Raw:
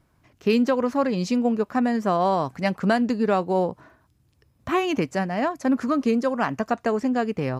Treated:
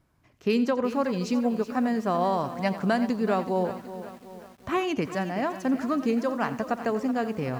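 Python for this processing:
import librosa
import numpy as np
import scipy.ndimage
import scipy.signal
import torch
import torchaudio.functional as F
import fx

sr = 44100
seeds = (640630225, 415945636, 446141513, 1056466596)

y = x + 10.0 ** (-15.0 / 20.0) * np.pad(x, (int(87 * sr / 1000.0), 0))[:len(x)]
y = fx.echo_crushed(y, sr, ms=375, feedback_pct=55, bits=7, wet_db=-12.5)
y = y * 10.0 ** (-4.0 / 20.0)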